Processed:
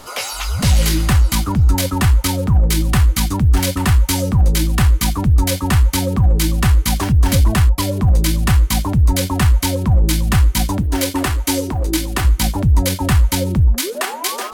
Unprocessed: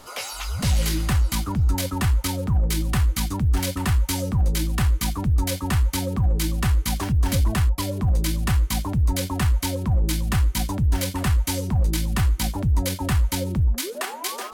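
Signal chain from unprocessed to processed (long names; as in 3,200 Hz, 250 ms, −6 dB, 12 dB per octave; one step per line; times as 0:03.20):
0:10.81–0:12.25: low shelf with overshoot 240 Hz −6.5 dB, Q 3
level +7.5 dB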